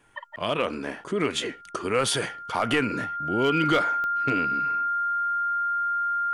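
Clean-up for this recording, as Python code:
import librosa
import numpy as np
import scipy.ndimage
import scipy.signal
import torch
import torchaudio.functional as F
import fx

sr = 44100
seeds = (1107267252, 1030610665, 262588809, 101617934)

y = fx.fix_declip(x, sr, threshold_db=-14.0)
y = fx.fix_declick_ar(y, sr, threshold=10.0)
y = fx.notch(y, sr, hz=1400.0, q=30.0)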